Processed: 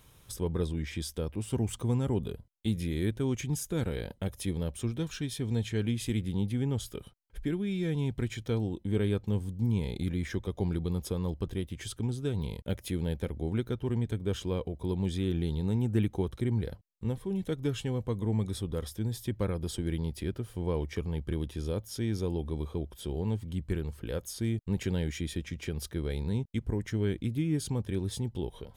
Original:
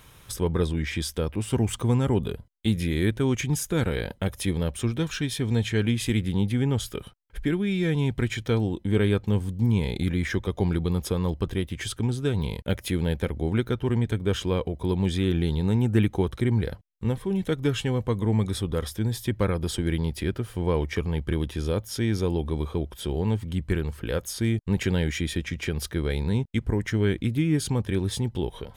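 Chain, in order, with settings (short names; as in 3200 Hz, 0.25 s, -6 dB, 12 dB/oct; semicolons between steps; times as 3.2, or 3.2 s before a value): bell 1700 Hz -5.5 dB 1.9 oct; gain -6 dB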